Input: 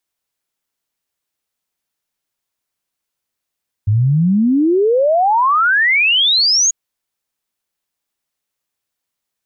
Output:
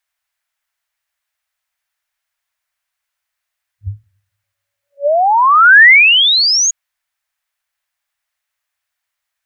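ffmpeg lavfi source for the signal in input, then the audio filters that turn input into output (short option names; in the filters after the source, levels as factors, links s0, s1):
-f lavfi -i "aevalsrc='0.316*clip(min(t,2.84-t)/0.01,0,1)*sin(2*PI*99*2.84/log(6800/99)*(exp(log(6800/99)*t/2.84)-1))':d=2.84:s=44100"
-af "afftfilt=real='re*(1-between(b*sr/4096,100,560))':imag='im*(1-between(b*sr/4096,100,560))':win_size=4096:overlap=0.75,equalizer=f=1800:w=1.1:g=9"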